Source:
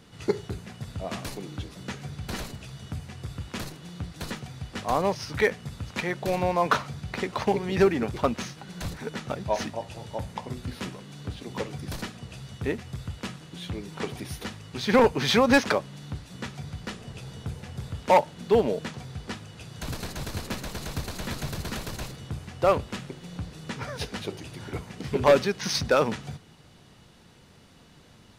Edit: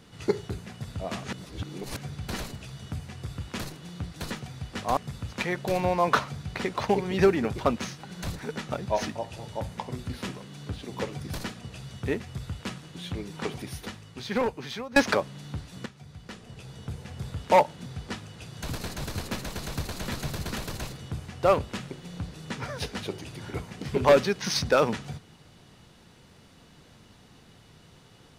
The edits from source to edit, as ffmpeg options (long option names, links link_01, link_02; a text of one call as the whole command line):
ffmpeg -i in.wav -filter_complex "[0:a]asplit=7[link_01][link_02][link_03][link_04][link_05][link_06][link_07];[link_01]atrim=end=1.242[link_08];[link_02]atrim=start=1.238:end=1.972,asetpts=PTS-STARTPTS,areverse[link_09];[link_03]atrim=start=1.968:end=4.972[link_10];[link_04]atrim=start=5.548:end=15.54,asetpts=PTS-STARTPTS,afade=type=out:start_time=8.482:duration=1.51:silence=0.0668344[link_11];[link_05]atrim=start=15.54:end=16.44,asetpts=PTS-STARTPTS,afade=type=in:duration=0.004:curve=hsin:silence=0.0668344,afade=type=out:start_time=0.896:duration=0.004:curve=hsin:silence=0.223872[link_12];[link_06]atrim=start=16.44:end=18.442,asetpts=PTS-STARTPTS,afade=type=in:duration=1.4:silence=0.223872[link_13];[link_07]atrim=start=19.048[link_14];[link_08][link_09]acrossfade=duration=0.004:curve1=hsin:curve2=hsin[link_15];[link_15][link_10]acrossfade=duration=0.004:curve1=hsin:curve2=hsin[link_16];[link_11][link_12][link_13]concat=n=3:v=0:a=1[link_17];[link_16][link_17]acrossfade=duration=0.004:curve1=hsin:curve2=hsin[link_18];[link_18][link_14]acrossfade=duration=0.004:curve1=hsin:curve2=hsin" out.wav